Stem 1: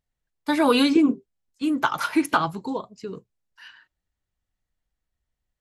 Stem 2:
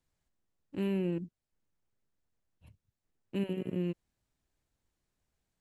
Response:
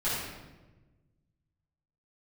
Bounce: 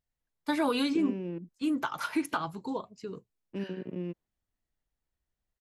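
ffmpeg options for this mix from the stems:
-filter_complex "[0:a]volume=0.531[s0];[1:a]highpass=160,agate=range=0.447:threshold=0.002:ratio=16:detection=peak,adynamicsmooth=sensitivity=5.5:basefreq=2100,adelay=200,volume=0.841[s1];[s0][s1]amix=inputs=2:normalize=0,alimiter=limit=0.112:level=0:latency=1:release=341"

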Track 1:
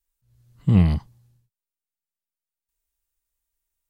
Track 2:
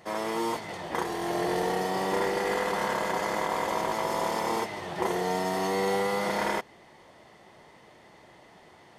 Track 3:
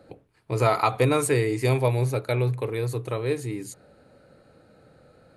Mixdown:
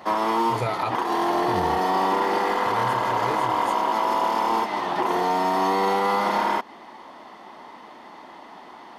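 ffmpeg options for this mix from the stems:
-filter_complex "[0:a]adelay=800,volume=0.422[s0];[1:a]equalizer=f=125:t=o:w=1:g=-9,equalizer=f=250:t=o:w=1:g=12,equalizer=f=500:t=o:w=1:g=-5,equalizer=f=1000:t=o:w=1:g=8,equalizer=f=2000:t=o:w=1:g=-5,equalizer=f=8000:t=o:w=1:g=-9,asplit=2[s1][s2];[s2]highpass=f=720:p=1,volume=4.47,asoftclip=type=tanh:threshold=0.335[s3];[s1][s3]amix=inputs=2:normalize=0,lowpass=f=7200:p=1,volume=0.501,volume=1.33[s4];[2:a]volume=0.794,asplit=3[s5][s6][s7];[s5]atrim=end=0.96,asetpts=PTS-STARTPTS,afade=t=out:st=0.956:d=0.004:c=hsin[s8];[s6]atrim=start=0.96:end=2.66,asetpts=PTS-STARTPTS,volume=0[s9];[s7]atrim=start=2.66,asetpts=PTS-STARTPTS,afade=t=in:d=0.004:c=hsin[s10];[s8][s9][s10]concat=n=3:v=0:a=1,asplit=2[s11][s12];[s12]apad=whole_len=206919[s13];[s0][s13]sidechaincompress=threshold=0.02:ratio=8:attack=16:release=1100[s14];[s14][s4][s11]amix=inputs=3:normalize=0,alimiter=limit=0.188:level=0:latency=1:release=120"

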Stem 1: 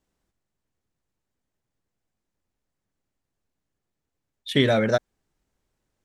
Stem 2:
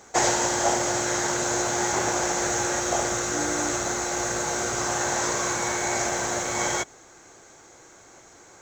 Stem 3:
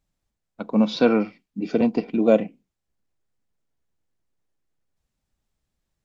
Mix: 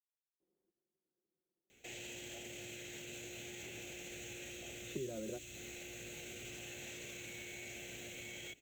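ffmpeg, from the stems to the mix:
-filter_complex "[0:a]aecho=1:1:5.6:0.65,acompressor=threshold=0.0891:ratio=6,bandpass=f=370:t=q:w=3.1:csg=0,adelay=400,volume=0.944[s0];[1:a]firequalizer=gain_entry='entry(220,0);entry(510,-5);entry(1000,-24);entry(2600,13);entry(5100,-12);entry(12000,11)':delay=0.05:min_phase=1,alimiter=level_in=1.12:limit=0.0631:level=0:latency=1:release=32,volume=0.891,adelay=1700,volume=0.2[s1];[s0][s1]amix=inputs=2:normalize=0,acrossover=split=160|3000[s2][s3][s4];[s3]acompressor=threshold=0.00398:ratio=2.5[s5];[s2][s5][s4]amix=inputs=3:normalize=0"

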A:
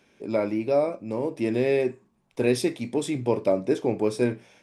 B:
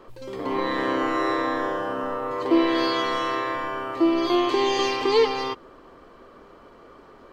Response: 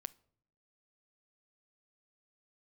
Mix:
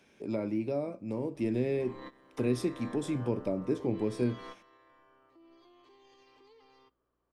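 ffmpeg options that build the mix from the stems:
-filter_complex "[0:a]volume=0.794,asplit=2[s0][s1];[1:a]alimiter=limit=0.112:level=0:latency=1:release=19,aeval=exprs='val(0)+0.00282*(sin(2*PI*60*n/s)+sin(2*PI*2*60*n/s)/2+sin(2*PI*3*60*n/s)/3+sin(2*PI*4*60*n/s)/4+sin(2*PI*5*60*n/s)/5)':c=same,adelay=1350,volume=0.2,asplit=2[s2][s3];[s3]volume=0.0708[s4];[s1]apad=whole_len=382757[s5];[s2][s5]sidechaingate=range=0.0501:threshold=0.00316:ratio=16:detection=peak[s6];[2:a]atrim=start_sample=2205[s7];[s4][s7]afir=irnorm=-1:irlink=0[s8];[s0][s6][s8]amix=inputs=3:normalize=0,acrossover=split=310[s9][s10];[s10]acompressor=threshold=0.00631:ratio=2[s11];[s9][s11]amix=inputs=2:normalize=0"

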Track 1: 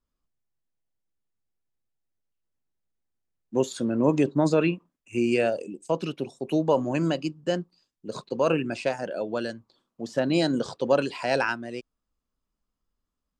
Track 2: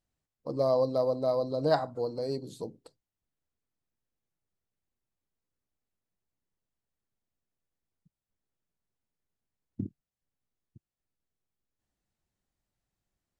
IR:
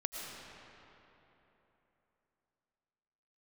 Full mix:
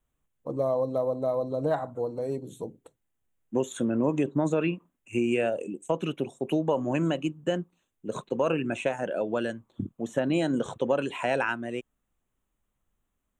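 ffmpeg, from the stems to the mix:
-filter_complex "[0:a]volume=1.26[s0];[1:a]volume=1.26[s1];[s0][s1]amix=inputs=2:normalize=0,asuperstop=centerf=4800:order=4:qfactor=1.7,acompressor=threshold=0.0708:ratio=3"

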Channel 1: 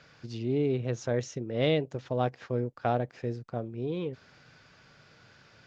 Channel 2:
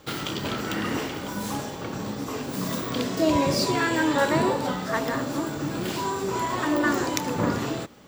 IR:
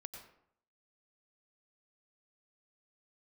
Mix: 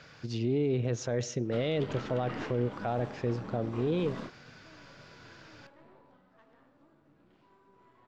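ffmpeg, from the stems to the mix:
-filter_complex "[0:a]volume=1.41,asplit=3[s0][s1][s2];[s1]volume=0.188[s3];[1:a]lowpass=2700,aeval=exprs='(tanh(10*val(0)+0.65)-tanh(0.65))/10':c=same,adelay=1450,volume=0.447,asplit=2[s4][s5];[s5]volume=0.075[s6];[s2]apad=whole_len=420176[s7];[s4][s7]sidechaingate=range=0.0141:threshold=0.00355:ratio=16:detection=peak[s8];[2:a]atrim=start_sample=2205[s9];[s3][s6]amix=inputs=2:normalize=0[s10];[s10][s9]afir=irnorm=-1:irlink=0[s11];[s0][s8][s11]amix=inputs=3:normalize=0,alimiter=limit=0.0944:level=0:latency=1:release=21"

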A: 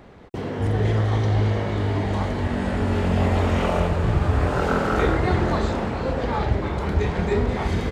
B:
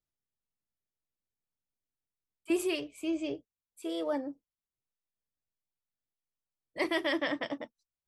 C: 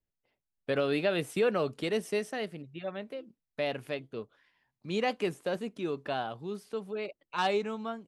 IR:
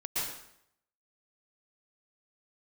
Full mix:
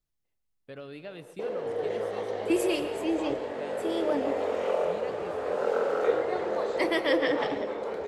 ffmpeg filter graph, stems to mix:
-filter_complex "[0:a]highpass=f=490:t=q:w=4.9,adelay=1050,volume=0.266[s0];[1:a]volume=1.19,asplit=2[s1][s2];[s2]volume=0.168[s3];[2:a]volume=0.178,asplit=2[s4][s5];[s5]volume=0.106[s6];[3:a]atrim=start_sample=2205[s7];[s3][s6]amix=inputs=2:normalize=0[s8];[s8][s7]afir=irnorm=-1:irlink=0[s9];[s0][s1][s4][s9]amix=inputs=4:normalize=0,lowshelf=f=100:g=10"

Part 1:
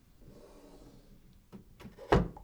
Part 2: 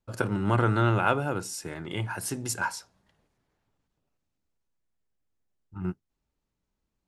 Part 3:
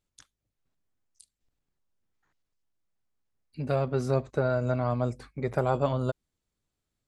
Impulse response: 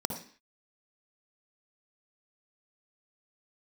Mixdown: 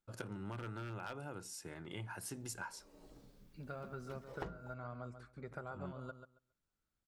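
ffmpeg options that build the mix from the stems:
-filter_complex "[0:a]adelay=2300,volume=0.596[s0];[1:a]aeval=exprs='0.188*(abs(mod(val(0)/0.188+3,4)-2)-1)':c=same,volume=0.266,asplit=2[s1][s2];[2:a]equalizer=f=1400:w=4.1:g=13,acompressor=threshold=0.00398:ratio=1.5,volume=0.316,asplit=2[s3][s4];[s4]volume=0.299[s5];[s2]apad=whole_len=208840[s6];[s0][s6]sidechaincompress=threshold=0.00501:ratio=8:attack=23:release=444[s7];[s5]aecho=0:1:137|274|411:1|0.17|0.0289[s8];[s7][s1][s3][s8]amix=inputs=4:normalize=0,acompressor=threshold=0.01:ratio=20"

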